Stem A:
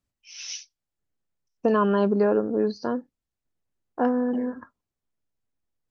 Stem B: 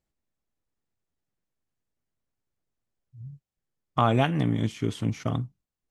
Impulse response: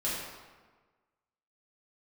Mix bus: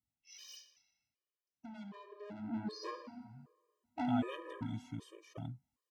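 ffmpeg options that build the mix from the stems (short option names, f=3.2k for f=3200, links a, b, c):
-filter_complex "[0:a]aecho=1:1:1:0.42,acompressor=threshold=-27dB:ratio=10,asoftclip=type=tanh:threshold=-34dB,volume=-0.5dB,afade=t=in:st=2.26:d=0.48:silence=0.266073,asplit=2[a][b];[b]volume=-10.5dB[c];[1:a]adelay=100,volume=-14.5dB[d];[2:a]atrim=start_sample=2205[e];[c][e]afir=irnorm=-1:irlink=0[f];[a][d][f]amix=inputs=3:normalize=0,highpass=73,afftfilt=real='re*gt(sin(2*PI*1.3*pts/sr)*(1-2*mod(floor(b*sr/1024/320),2)),0)':imag='im*gt(sin(2*PI*1.3*pts/sr)*(1-2*mod(floor(b*sr/1024/320),2)),0)':win_size=1024:overlap=0.75"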